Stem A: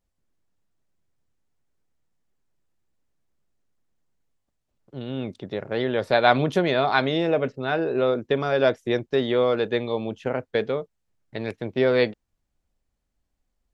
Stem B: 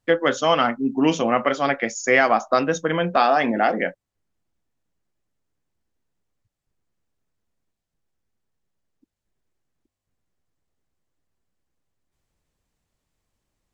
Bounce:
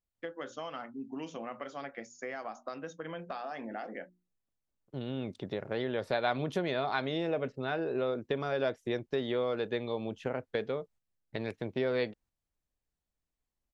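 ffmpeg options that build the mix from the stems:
-filter_complex "[0:a]agate=range=0.224:threshold=0.00355:ratio=16:detection=peak,volume=0.891[s0];[1:a]bandreject=f=60:t=h:w=6,bandreject=f=120:t=h:w=6,bandreject=f=180:t=h:w=6,bandreject=f=240:t=h:w=6,bandreject=f=300:t=h:w=6,bandreject=f=360:t=h:w=6,acrossover=split=1900|4000[s1][s2][s3];[s1]acompressor=threshold=0.112:ratio=4[s4];[s2]acompressor=threshold=0.0126:ratio=4[s5];[s3]acompressor=threshold=0.00891:ratio=4[s6];[s4][s5][s6]amix=inputs=3:normalize=0,adelay=150,volume=0.158[s7];[s0][s7]amix=inputs=2:normalize=0,acompressor=threshold=0.0158:ratio=2"

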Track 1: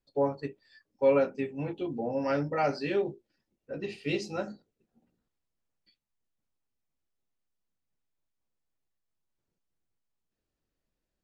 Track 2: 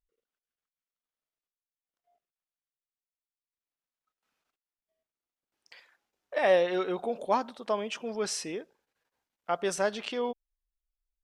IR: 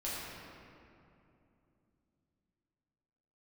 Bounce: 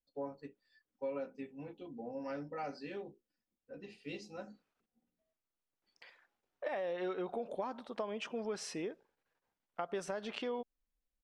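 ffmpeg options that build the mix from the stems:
-filter_complex "[0:a]aecho=1:1:4:0.41,volume=0.211[s0];[1:a]highshelf=f=4000:g=-11,alimiter=limit=0.0944:level=0:latency=1:release=87,adelay=300,volume=0.841[s1];[s0][s1]amix=inputs=2:normalize=0,acompressor=threshold=0.0178:ratio=6"

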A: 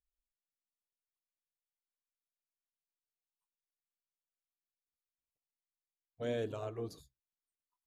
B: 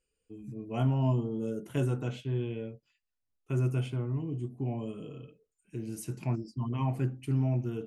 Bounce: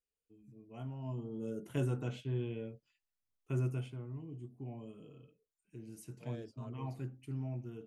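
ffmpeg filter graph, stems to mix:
-filter_complex "[0:a]volume=0.237[s0];[1:a]volume=0.596,afade=t=in:st=1.03:d=0.6:silence=0.266073,afade=t=out:st=3.56:d=0.37:silence=0.446684,asplit=2[s1][s2];[s2]apad=whole_len=347052[s3];[s0][s3]sidechaingate=range=0.0501:threshold=0.00224:ratio=16:detection=peak[s4];[s4][s1]amix=inputs=2:normalize=0"

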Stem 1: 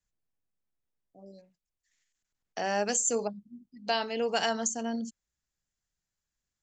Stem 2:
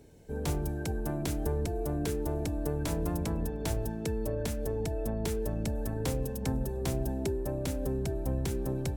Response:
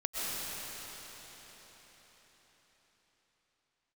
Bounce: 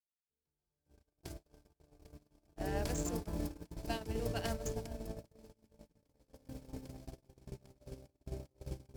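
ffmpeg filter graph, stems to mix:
-filter_complex "[0:a]adynamicsmooth=sensitivity=7.5:basefreq=1100,volume=0.891,asplit=2[s0][s1];[1:a]equalizer=f=4900:t=o:w=0.33:g=7,volume=1,asplit=2[s2][s3];[s3]volume=0.668[s4];[s1]apad=whole_len=395493[s5];[s2][s5]sidechaingate=range=0.0794:threshold=0.00282:ratio=16:detection=peak[s6];[2:a]atrim=start_sample=2205[s7];[s4][s7]afir=irnorm=-1:irlink=0[s8];[s0][s6][s8]amix=inputs=3:normalize=0,agate=range=0.00112:threshold=0.0708:ratio=16:detection=peak,acompressor=threshold=0.00316:ratio=1.5"

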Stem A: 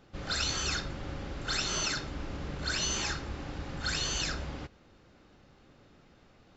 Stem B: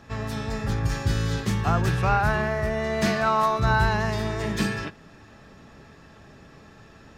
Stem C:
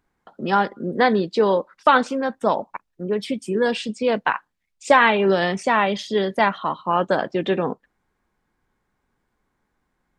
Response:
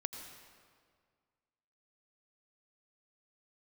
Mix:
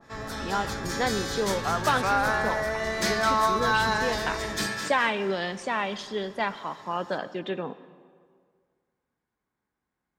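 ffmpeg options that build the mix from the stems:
-filter_complex "[0:a]lowpass=1200,volume=0.75[s0];[1:a]highpass=f=560:p=1,equalizer=f=2700:w=4.3:g=-9.5,volume=0.944,asplit=2[s1][s2];[s2]volume=0.376[s3];[2:a]highpass=61,volume=0.211,asplit=2[s4][s5];[s5]volume=0.531[s6];[3:a]atrim=start_sample=2205[s7];[s6][s7]afir=irnorm=-1:irlink=0[s8];[s3]aecho=0:1:214|428|642|856:1|0.26|0.0676|0.0176[s9];[s0][s1][s4][s8][s9]amix=inputs=5:normalize=0,adynamicequalizer=threshold=0.0112:dfrequency=2000:dqfactor=0.7:tfrequency=2000:tqfactor=0.7:attack=5:release=100:ratio=0.375:range=2.5:mode=boostabove:tftype=highshelf"

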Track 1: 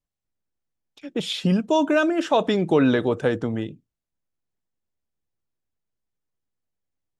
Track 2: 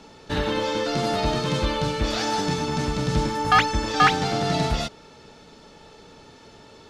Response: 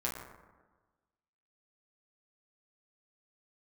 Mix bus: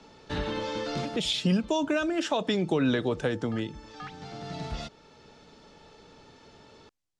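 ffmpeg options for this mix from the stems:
-filter_complex "[0:a]highshelf=f=2800:g=10.5,volume=0.631,asplit=2[s0][s1];[1:a]acrossover=split=260[s2][s3];[s3]acompressor=threshold=0.0501:ratio=2[s4];[s2][s4]amix=inputs=2:normalize=0,volume=0.531[s5];[s1]apad=whole_len=303919[s6];[s5][s6]sidechaincompress=threshold=0.01:ratio=8:attack=16:release=1340[s7];[s0][s7]amix=inputs=2:normalize=0,lowpass=7400,acrossover=split=220[s8][s9];[s9]acompressor=threshold=0.0562:ratio=4[s10];[s8][s10]amix=inputs=2:normalize=0"

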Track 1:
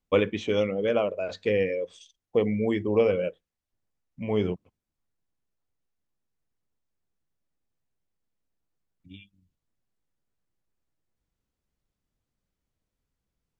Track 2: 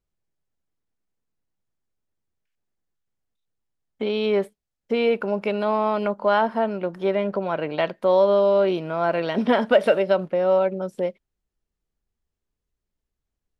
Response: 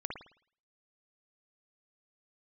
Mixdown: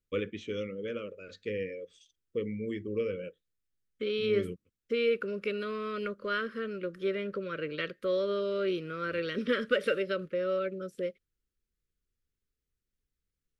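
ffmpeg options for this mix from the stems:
-filter_complex "[0:a]volume=0.335[s0];[1:a]equalizer=f=220:t=o:w=1.1:g=-6.5,volume=0.562[s1];[s0][s1]amix=inputs=2:normalize=0,asuperstop=centerf=800:order=8:qfactor=1.2"

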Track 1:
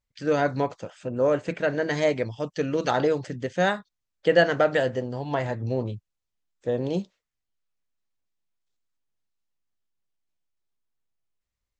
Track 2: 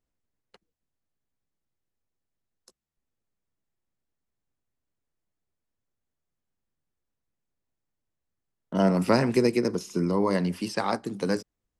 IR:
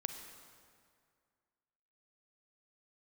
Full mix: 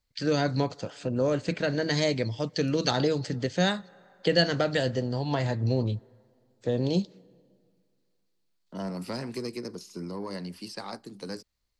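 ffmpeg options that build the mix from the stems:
-filter_complex "[0:a]volume=1.41,asplit=2[s0][s1];[s1]volume=0.0891[s2];[1:a]highshelf=f=5700:g=4.5,asoftclip=type=tanh:threshold=0.211,volume=0.299[s3];[2:a]atrim=start_sample=2205[s4];[s2][s4]afir=irnorm=-1:irlink=0[s5];[s0][s3][s5]amix=inputs=3:normalize=0,equalizer=f=4400:w=3.7:g=9.5,acrossover=split=280|3000[s6][s7][s8];[s7]acompressor=threshold=0.02:ratio=2[s9];[s6][s9][s8]amix=inputs=3:normalize=0"

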